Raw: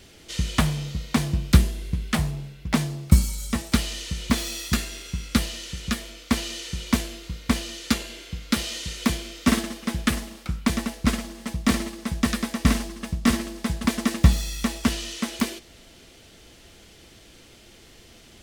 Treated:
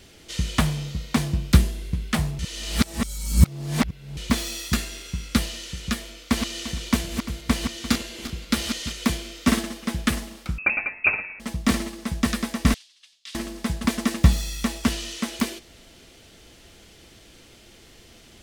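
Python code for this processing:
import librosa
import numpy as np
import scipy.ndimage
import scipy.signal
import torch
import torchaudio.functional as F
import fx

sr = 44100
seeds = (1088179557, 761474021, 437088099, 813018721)

y = fx.reverse_delay_fb(x, sr, ms=173, feedback_pct=43, wet_db=-7, at=(6.2, 8.92))
y = fx.freq_invert(y, sr, carrier_hz=2600, at=(10.58, 11.4))
y = fx.ladder_bandpass(y, sr, hz=4200.0, resonance_pct=40, at=(12.74, 13.35))
y = fx.edit(y, sr, fx.reverse_span(start_s=2.39, length_s=1.78), tone=tone)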